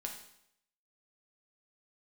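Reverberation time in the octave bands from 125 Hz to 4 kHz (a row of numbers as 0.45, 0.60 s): 0.75, 0.75, 0.75, 0.75, 0.70, 0.70 s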